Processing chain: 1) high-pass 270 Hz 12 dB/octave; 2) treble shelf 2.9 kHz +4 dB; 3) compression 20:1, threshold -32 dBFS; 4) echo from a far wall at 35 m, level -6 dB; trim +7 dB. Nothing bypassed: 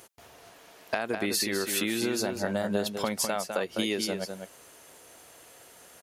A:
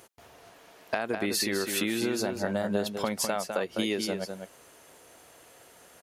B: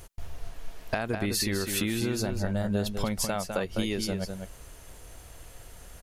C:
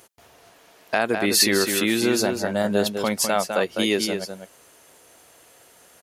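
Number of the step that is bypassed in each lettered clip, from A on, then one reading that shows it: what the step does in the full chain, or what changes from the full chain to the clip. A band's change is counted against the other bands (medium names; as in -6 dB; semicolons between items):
2, 8 kHz band -2.0 dB; 1, 125 Hz band +11.0 dB; 3, mean gain reduction 4.5 dB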